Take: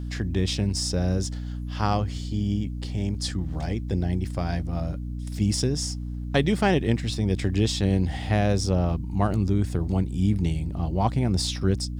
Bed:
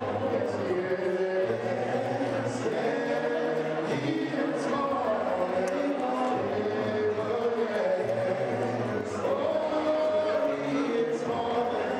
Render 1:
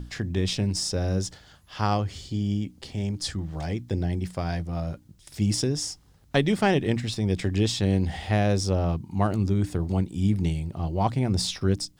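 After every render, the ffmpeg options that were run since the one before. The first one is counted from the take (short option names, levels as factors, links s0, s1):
-af "bandreject=f=60:t=h:w=6,bandreject=f=120:t=h:w=6,bandreject=f=180:t=h:w=6,bandreject=f=240:t=h:w=6,bandreject=f=300:t=h:w=6"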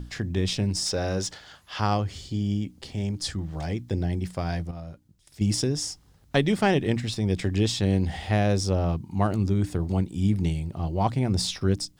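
-filter_complex "[0:a]asettb=1/sr,asplit=3[s0][s1][s2];[s0]atrim=end=0.864[s3];[s1]atrim=start=0.86:end=1.8,asetpts=PTS-STARTPTS,afade=t=in:d=0.004:c=qsin,afade=t=out:st=0.936:d=0.004:c=qsin,asplit=2[s4][s5];[s5]highpass=f=720:p=1,volume=3.98,asoftclip=type=tanh:threshold=0.178[s6];[s4][s6]amix=inputs=2:normalize=0,lowpass=f=5100:p=1,volume=0.501[s7];[s2]atrim=start=1.796[s8];[s3][s7]acrossfade=d=0.004:c1=hsin:c2=qsin[s9];[s9][s8]acrossfade=d=0.004:c1=qsin:c2=hsin,asplit=3[s10][s11][s12];[s10]atrim=end=4.712[s13];[s11]atrim=start=4.708:end=5.412,asetpts=PTS-STARTPTS,volume=0.376[s14];[s12]atrim=start=5.408[s15];[s13][s14]acrossfade=d=0.004:c1=hsin:c2=hsin[s16];[s16][s15]acrossfade=d=0.004:c1=hsin:c2=hsin"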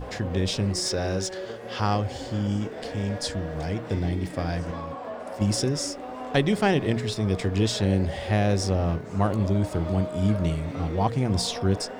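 -filter_complex "[1:a]volume=0.398[s0];[0:a][s0]amix=inputs=2:normalize=0"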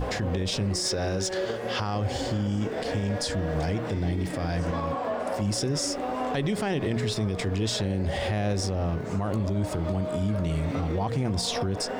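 -filter_complex "[0:a]asplit=2[s0][s1];[s1]acompressor=threshold=0.0316:ratio=6,volume=1.12[s2];[s0][s2]amix=inputs=2:normalize=0,alimiter=limit=0.112:level=0:latency=1:release=59"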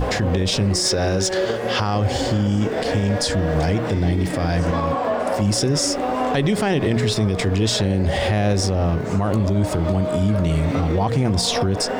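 -af "volume=2.51"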